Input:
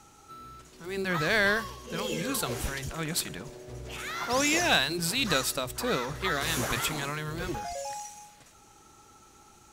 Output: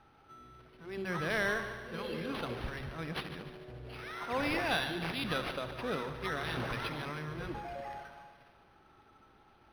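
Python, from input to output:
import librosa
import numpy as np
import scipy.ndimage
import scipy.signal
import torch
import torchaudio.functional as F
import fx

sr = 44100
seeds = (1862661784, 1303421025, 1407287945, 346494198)

y = scipy.signal.sosfilt(scipy.signal.butter(4, 11000.0, 'lowpass', fs=sr, output='sos'), x)
y = fx.echo_heads(y, sr, ms=73, heads='first and second', feedback_pct=62, wet_db=-14)
y = np.interp(np.arange(len(y)), np.arange(len(y))[::6], y[::6])
y = y * librosa.db_to_amplitude(-6.5)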